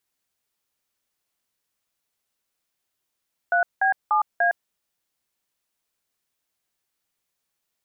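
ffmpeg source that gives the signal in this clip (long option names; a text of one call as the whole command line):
ffmpeg -f lavfi -i "aevalsrc='0.106*clip(min(mod(t,0.294),0.11-mod(t,0.294))/0.002,0,1)*(eq(floor(t/0.294),0)*(sin(2*PI*697*mod(t,0.294))+sin(2*PI*1477*mod(t,0.294)))+eq(floor(t/0.294),1)*(sin(2*PI*770*mod(t,0.294))+sin(2*PI*1633*mod(t,0.294)))+eq(floor(t/0.294),2)*(sin(2*PI*852*mod(t,0.294))+sin(2*PI*1209*mod(t,0.294)))+eq(floor(t/0.294),3)*(sin(2*PI*697*mod(t,0.294))+sin(2*PI*1633*mod(t,0.294))))':duration=1.176:sample_rate=44100" out.wav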